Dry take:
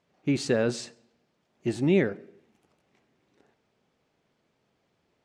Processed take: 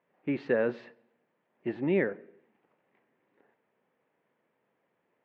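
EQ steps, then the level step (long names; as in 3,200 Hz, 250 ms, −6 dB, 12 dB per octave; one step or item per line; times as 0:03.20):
loudspeaker in its box 180–2,700 Hz, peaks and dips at 510 Hz +5 dB, 970 Hz +5 dB, 1,800 Hz +6 dB
−4.5 dB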